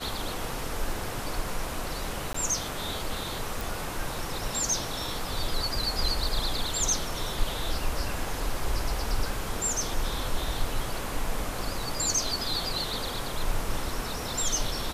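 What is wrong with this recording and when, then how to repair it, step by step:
2.33–2.34 s: dropout 14 ms
3.61 s: pop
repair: de-click; interpolate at 2.33 s, 14 ms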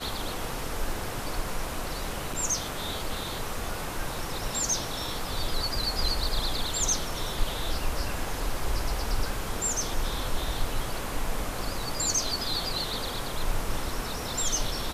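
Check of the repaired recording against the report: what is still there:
nothing left

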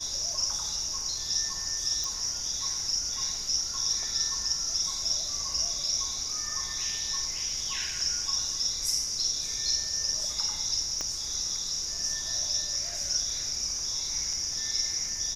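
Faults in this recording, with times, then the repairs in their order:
2.04 s: pop
11.01 s: pop -18 dBFS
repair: de-click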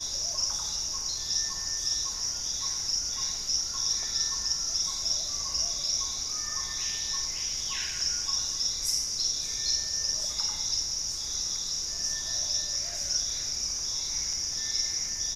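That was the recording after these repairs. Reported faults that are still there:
11.01 s: pop

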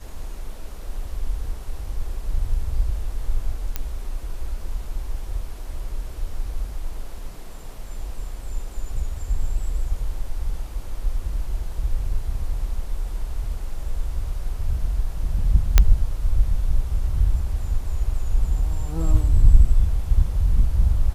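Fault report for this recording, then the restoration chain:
3.76 s: pop -10 dBFS
15.78 s: pop 0 dBFS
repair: de-click

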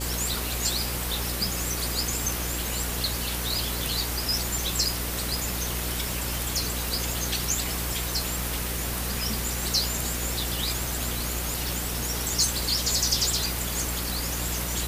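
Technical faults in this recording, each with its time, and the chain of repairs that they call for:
buzz 60 Hz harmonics 9 -33 dBFS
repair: de-hum 60 Hz, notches 9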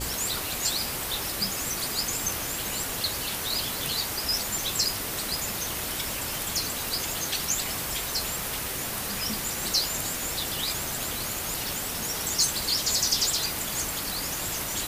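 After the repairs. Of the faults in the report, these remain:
nothing left

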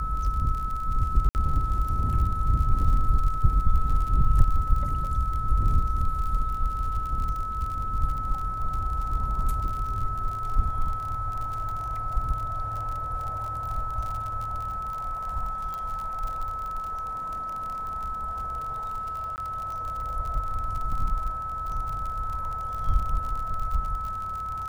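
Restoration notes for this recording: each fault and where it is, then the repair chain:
crackle 47 per s -32 dBFS
whine 1.3 kHz -30 dBFS
1.29–1.35 s: dropout 59 ms
15.74 s: pop
19.36–19.38 s: dropout 19 ms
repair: de-click; band-stop 1.3 kHz, Q 30; interpolate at 1.29 s, 59 ms; interpolate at 19.36 s, 19 ms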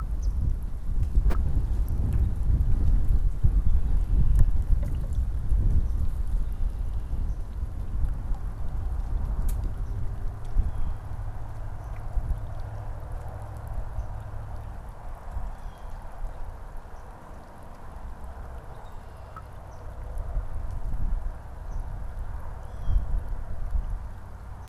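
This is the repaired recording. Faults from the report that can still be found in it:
nothing left

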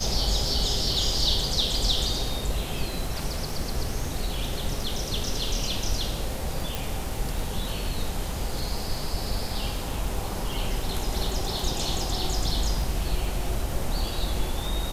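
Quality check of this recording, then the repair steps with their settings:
crackle 45 per s -34 dBFS
6.75 s: pop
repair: de-click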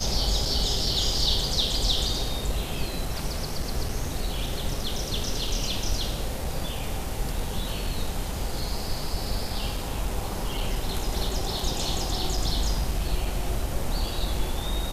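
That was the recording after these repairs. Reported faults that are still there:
6.75 s: pop

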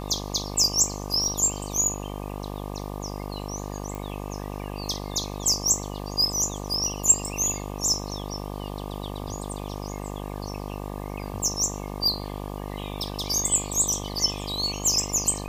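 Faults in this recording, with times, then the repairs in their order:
buzz 50 Hz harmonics 24 -34 dBFS
3.95 s: pop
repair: de-click; de-hum 50 Hz, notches 24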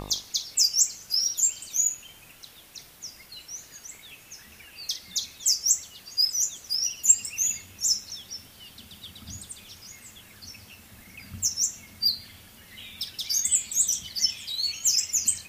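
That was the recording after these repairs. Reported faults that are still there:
nothing left

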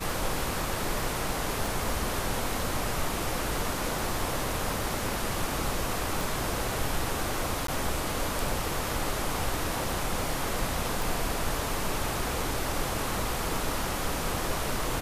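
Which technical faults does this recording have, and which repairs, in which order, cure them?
1.66 s: pop
6.21 s: pop
7.67–7.68 s: dropout 13 ms
11.02 s: pop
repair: de-click; interpolate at 7.67 s, 13 ms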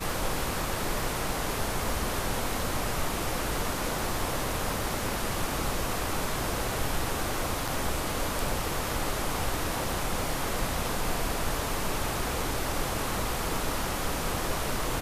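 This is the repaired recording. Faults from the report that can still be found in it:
6.21 s: pop

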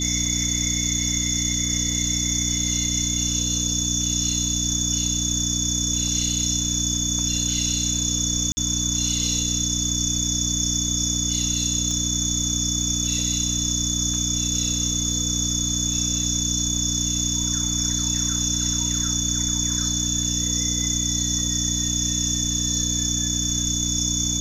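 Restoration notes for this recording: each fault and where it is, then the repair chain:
hum 60 Hz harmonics 5 -28 dBFS
whine 3.5 kHz -29 dBFS
8.52–8.57 s: dropout 50 ms
11.91 s: dropout 2.1 ms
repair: band-stop 3.5 kHz, Q 30; de-hum 60 Hz, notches 5; interpolate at 8.52 s, 50 ms; interpolate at 11.91 s, 2.1 ms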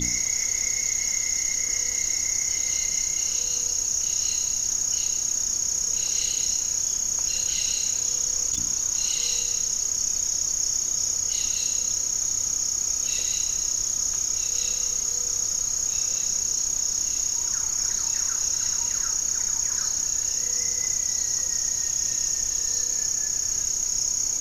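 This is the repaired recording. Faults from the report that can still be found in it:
nothing left

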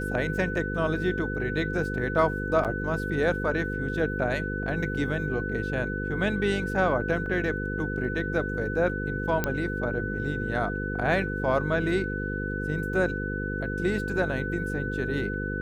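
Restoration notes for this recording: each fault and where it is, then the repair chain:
buzz 50 Hz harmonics 10 -32 dBFS
whine 1.5 kHz -33 dBFS
2.64–2.65 s: dropout 7.6 ms
7.26 s: dropout 2.5 ms
9.44 s: pop -11 dBFS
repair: de-click; band-stop 1.5 kHz, Q 30; de-hum 50 Hz, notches 10; interpolate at 2.64 s, 7.6 ms; interpolate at 7.26 s, 2.5 ms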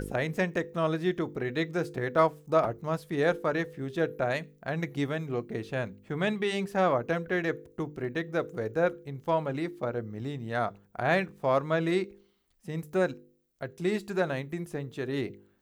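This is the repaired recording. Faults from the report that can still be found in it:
nothing left

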